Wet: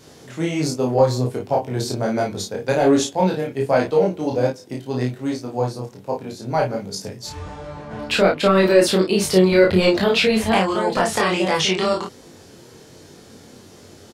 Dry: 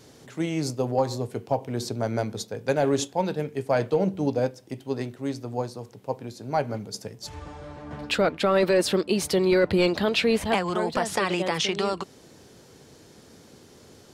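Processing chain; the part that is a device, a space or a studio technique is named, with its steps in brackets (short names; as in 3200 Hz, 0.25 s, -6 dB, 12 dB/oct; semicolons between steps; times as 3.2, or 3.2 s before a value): 3.85–4.32 low shelf 170 Hz -10.5 dB; double-tracked vocal (doubler 32 ms -3 dB; chorus 1.3 Hz, delay 20 ms, depth 3.7 ms); gain +7.5 dB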